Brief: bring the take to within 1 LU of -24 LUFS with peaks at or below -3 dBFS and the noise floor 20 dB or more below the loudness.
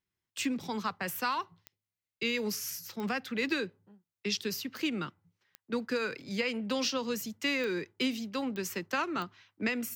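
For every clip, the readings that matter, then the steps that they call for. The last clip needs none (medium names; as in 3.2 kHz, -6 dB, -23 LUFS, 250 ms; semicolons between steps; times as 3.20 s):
clicks found 7; loudness -33.5 LUFS; peak level -17.5 dBFS; loudness target -24.0 LUFS
-> de-click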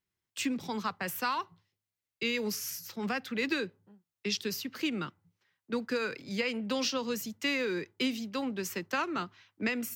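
clicks found 0; loudness -33.5 LUFS; peak level -17.5 dBFS; loudness target -24.0 LUFS
-> trim +9.5 dB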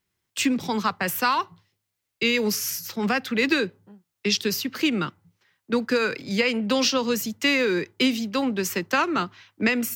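loudness -24.0 LUFS; peak level -8.0 dBFS; noise floor -81 dBFS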